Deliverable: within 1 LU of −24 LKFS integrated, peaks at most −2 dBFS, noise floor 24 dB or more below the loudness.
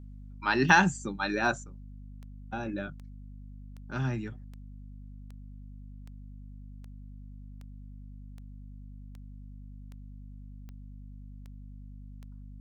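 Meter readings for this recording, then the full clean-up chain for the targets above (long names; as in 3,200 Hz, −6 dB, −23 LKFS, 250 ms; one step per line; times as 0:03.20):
number of clicks 16; mains hum 50 Hz; hum harmonics up to 250 Hz; level of the hum −43 dBFS; integrated loudness −28.5 LKFS; sample peak −7.5 dBFS; target loudness −24.0 LKFS
→ click removal
hum removal 50 Hz, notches 5
level +4.5 dB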